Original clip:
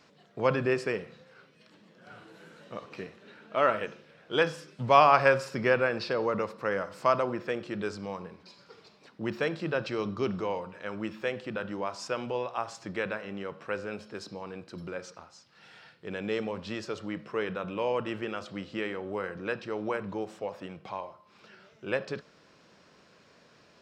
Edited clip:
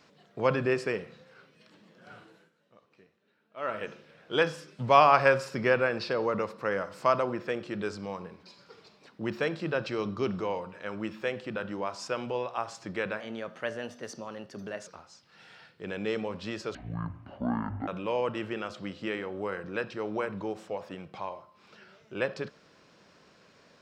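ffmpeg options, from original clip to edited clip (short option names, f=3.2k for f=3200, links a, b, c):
-filter_complex "[0:a]asplit=7[a][b][c][d][e][f][g];[a]atrim=end=2.51,asetpts=PTS-STARTPTS,afade=t=out:st=2.14:d=0.37:silence=0.1[h];[b]atrim=start=2.51:end=3.55,asetpts=PTS-STARTPTS,volume=-20dB[i];[c]atrim=start=3.55:end=13.204,asetpts=PTS-STARTPTS,afade=t=in:d=0.37:silence=0.1[j];[d]atrim=start=13.2:end=15.1,asetpts=PTS-STARTPTS,asetrate=50274,aresample=44100[k];[e]atrim=start=15.096:end=16.984[l];[f]atrim=start=16.98:end=17.59,asetpts=PTS-STARTPTS,asetrate=23814,aresample=44100[m];[g]atrim=start=17.586[n];[h][i][j]concat=n=3:v=0:a=1[o];[o][k]acrossfade=d=0.004:c1=hsin:c2=hsin[p];[p][l]acrossfade=d=0.004:c1=hsin:c2=hsin[q];[q][m]acrossfade=d=0.004:c1=hsin:c2=hsin[r];[r][n]acrossfade=d=0.004:c1=hsin:c2=hsin"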